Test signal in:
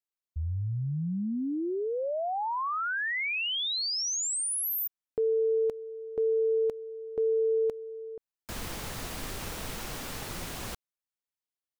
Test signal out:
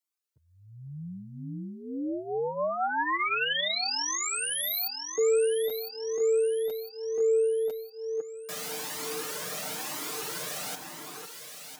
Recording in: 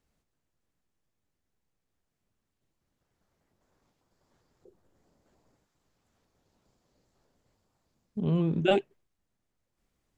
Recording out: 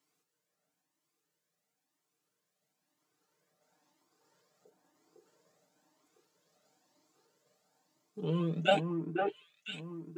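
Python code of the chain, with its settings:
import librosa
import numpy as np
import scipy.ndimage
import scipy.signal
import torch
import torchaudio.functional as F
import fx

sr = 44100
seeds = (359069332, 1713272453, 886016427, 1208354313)

p1 = scipy.signal.sosfilt(scipy.signal.butter(4, 170.0, 'highpass', fs=sr, output='sos'), x)
p2 = fx.bass_treble(p1, sr, bass_db=-5, treble_db=5)
p3 = p2 + 0.67 * np.pad(p2, (int(6.6 * sr / 1000.0), 0))[:len(p2)]
p4 = fx.rider(p3, sr, range_db=3, speed_s=2.0)
p5 = p3 + F.gain(torch.from_numpy(p4), -1.0).numpy()
p6 = fx.echo_alternate(p5, sr, ms=503, hz=1900.0, feedback_pct=60, wet_db=-3)
p7 = fx.comb_cascade(p6, sr, direction='rising', hz=1.0)
y = F.gain(torch.from_numpy(p7), -3.5).numpy()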